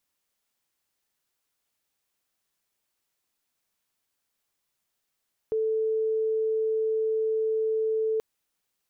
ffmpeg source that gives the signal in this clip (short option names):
-f lavfi -i "aevalsrc='0.0708*sin(2*PI*440*t)':d=2.68:s=44100"